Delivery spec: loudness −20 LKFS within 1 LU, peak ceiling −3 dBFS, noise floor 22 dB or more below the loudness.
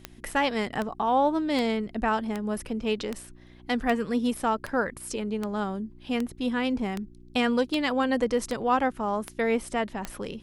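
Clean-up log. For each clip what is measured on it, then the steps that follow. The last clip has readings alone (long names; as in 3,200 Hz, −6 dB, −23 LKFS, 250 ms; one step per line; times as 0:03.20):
number of clicks 14; mains hum 60 Hz; hum harmonics up to 360 Hz; level of the hum −51 dBFS; integrated loudness −28.0 LKFS; sample peak −12.0 dBFS; target loudness −20.0 LKFS
→ click removal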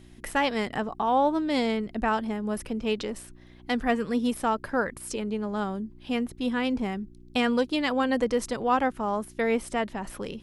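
number of clicks 0; mains hum 60 Hz; hum harmonics up to 360 Hz; level of the hum −51 dBFS
→ hum removal 60 Hz, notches 6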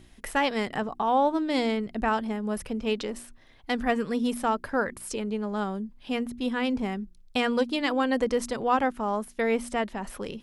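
mains hum none found; integrated loudness −28.0 LKFS; sample peak −12.0 dBFS; target loudness −20.0 LKFS
→ level +8 dB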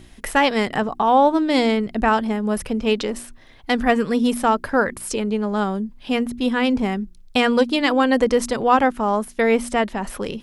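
integrated loudness −20.0 LKFS; sample peak −4.0 dBFS; background noise floor −46 dBFS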